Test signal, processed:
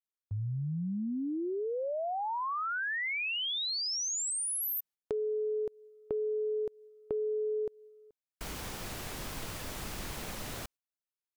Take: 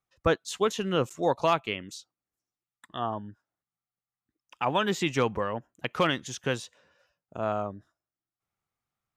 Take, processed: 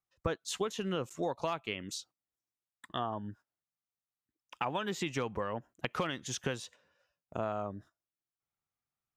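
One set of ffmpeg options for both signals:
-af "acompressor=threshold=-34dB:ratio=6,agate=range=-10dB:threshold=-57dB:ratio=16:detection=peak,volume=2.5dB"

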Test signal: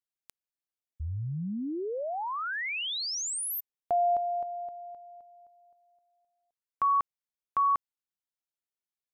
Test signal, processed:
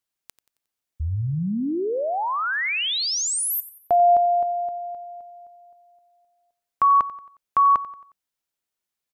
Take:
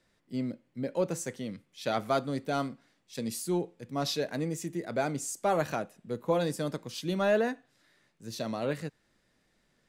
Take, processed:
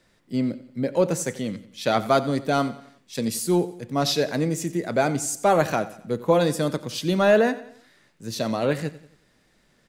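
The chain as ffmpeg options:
-af "aecho=1:1:90|180|270|360:0.15|0.0658|0.029|0.0127,volume=8.5dB"

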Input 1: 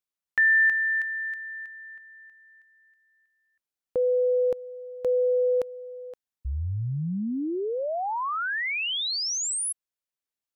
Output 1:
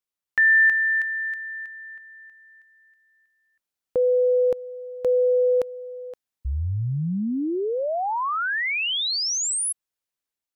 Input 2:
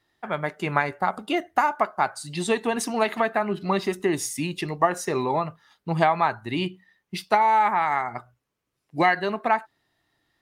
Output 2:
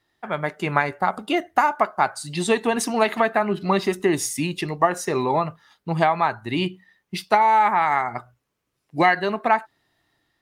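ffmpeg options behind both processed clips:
-af "dynaudnorm=f=100:g=7:m=3.5dB"

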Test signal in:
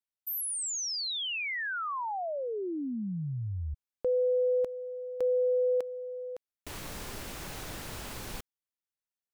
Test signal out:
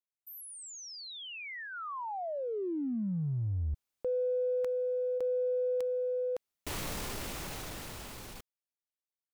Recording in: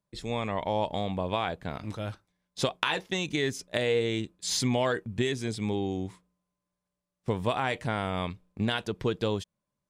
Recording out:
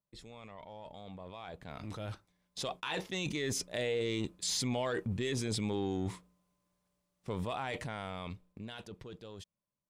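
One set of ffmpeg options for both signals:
-af "areverse,acompressor=threshold=-36dB:ratio=8:attack=0.7:release=47:knee=1:detection=peak,areverse,equalizer=f=1.6k:w=7.4:g=-3,dynaudnorm=f=270:g=17:m=15.5dB,volume=-9dB"

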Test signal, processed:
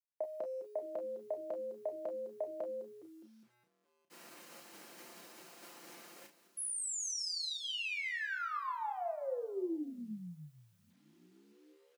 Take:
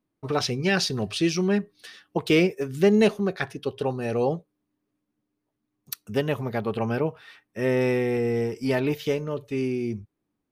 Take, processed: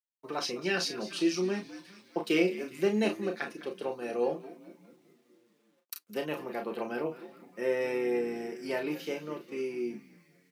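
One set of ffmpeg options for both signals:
-filter_complex "[0:a]agate=range=-33dB:threshold=-37dB:ratio=3:detection=peak,bandreject=f=3.5k:w=12,asplit=2[a][b];[b]asplit=7[c][d][e][f][g][h][i];[c]adelay=206,afreqshift=-100,volume=-15.5dB[j];[d]adelay=412,afreqshift=-200,volume=-19.4dB[k];[e]adelay=618,afreqshift=-300,volume=-23.3dB[l];[f]adelay=824,afreqshift=-400,volume=-27.1dB[m];[g]adelay=1030,afreqshift=-500,volume=-31dB[n];[h]adelay=1236,afreqshift=-600,volume=-34.9dB[o];[i]adelay=1442,afreqshift=-700,volume=-38.8dB[p];[j][k][l][m][n][o][p]amix=inputs=7:normalize=0[q];[a][q]amix=inputs=2:normalize=0,acrusher=bits=10:mix=0:aa=0.000001,highpass=f=230:w=0.5412,highpass=f=230:w=1.3066,aecho=1:1:5.8:0.44,asplit=2[r][s];[s]aecho=0:1:33|46:0.473|0.237[t];[r][t]amix=inputs=2:normalize=0,volume=-8dB"

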